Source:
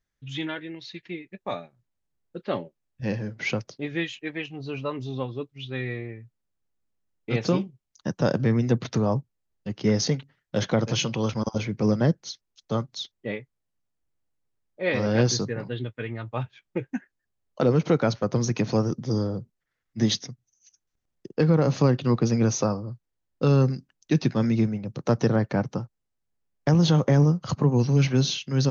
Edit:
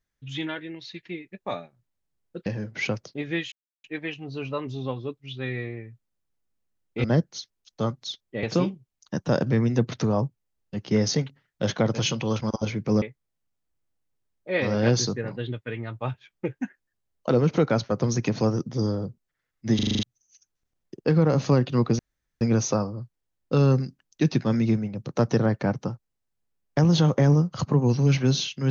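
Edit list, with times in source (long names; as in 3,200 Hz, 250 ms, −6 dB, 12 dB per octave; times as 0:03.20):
0:02.46–0:03.10: remove
0:04.16: splice in silence 0.32 s
0:11.95–0:13.34: move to 0:07.36
0:20.07: stutter in place 0.04 s, 7 plays
0:22.31: splice in room tone 0.42 s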